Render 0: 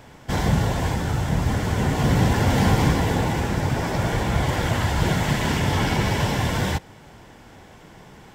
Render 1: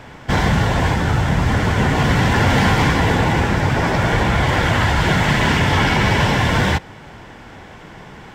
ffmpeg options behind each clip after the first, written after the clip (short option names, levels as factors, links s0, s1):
-filter_complex "[0:a]lowpass=f=1700:p=1,acrossover=split=1200[s0][s1];[s0]alimiter=limit=0.15:level=0:latency=1[s2];[s1]acontrast=86[s3];[s2][s3]amix=inputs=2:normalize=0,volume=2.24"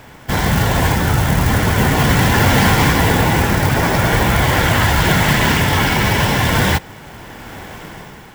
-af "acrusher=bits=5:mode=log:mix=0:aa=0.000001,dynaudnorm=f=140:g=7:m=2.51,highshelf=f=7800:g=10.5,volume=0.794"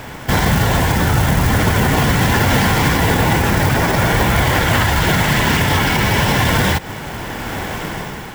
-af "alimiter=limit=0.224:level=0:latency=1:release=141,volume=2.66"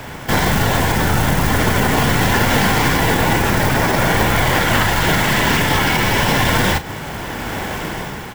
-filter_complex "[0:a]acrossover=split=220[s0][s1];[s0]aeval=exprs='clip(val(0),-1,0.0355)':c=same[s2];[s2][s1]amix=inputs=2:normalize=0,asplit=2[s3][s4];[s4]adelay=37,volume=0.251[s5];[s3][s5]amix=inputs=2:normalize=0"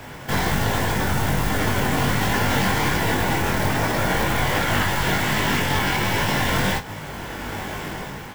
-af "flanger=delay=19.5:depth=2.4:speed=1.3,volume=0.708"